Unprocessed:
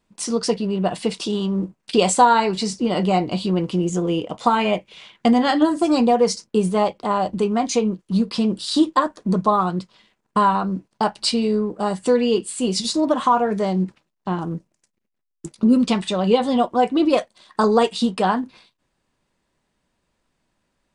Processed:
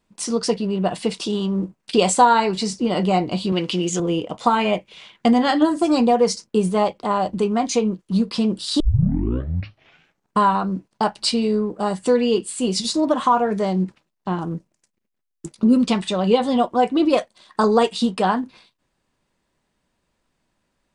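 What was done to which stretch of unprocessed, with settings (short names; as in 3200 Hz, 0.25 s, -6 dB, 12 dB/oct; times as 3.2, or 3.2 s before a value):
3.52–4 weighting filter D
8.8 tape start 1.57 s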